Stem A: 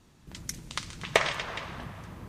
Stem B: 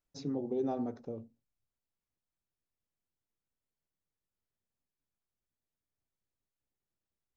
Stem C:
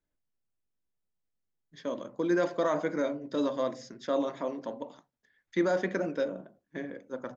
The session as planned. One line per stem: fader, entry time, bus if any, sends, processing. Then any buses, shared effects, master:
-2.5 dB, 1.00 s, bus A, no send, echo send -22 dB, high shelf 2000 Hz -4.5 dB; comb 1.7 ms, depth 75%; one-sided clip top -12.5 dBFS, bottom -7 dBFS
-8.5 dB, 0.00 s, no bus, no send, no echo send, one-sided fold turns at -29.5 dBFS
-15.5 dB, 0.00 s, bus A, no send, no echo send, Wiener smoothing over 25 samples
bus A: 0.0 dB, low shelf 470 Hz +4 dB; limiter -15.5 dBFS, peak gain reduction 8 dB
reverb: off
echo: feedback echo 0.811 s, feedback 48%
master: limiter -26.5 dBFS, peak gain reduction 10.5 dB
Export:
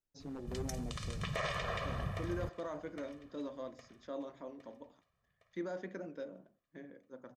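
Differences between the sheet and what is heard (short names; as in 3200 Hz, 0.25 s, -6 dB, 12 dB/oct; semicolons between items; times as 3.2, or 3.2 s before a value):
stem A: entry 1.00 s -> 0.20 s; stem C: missing Wiener smoothing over 25 samples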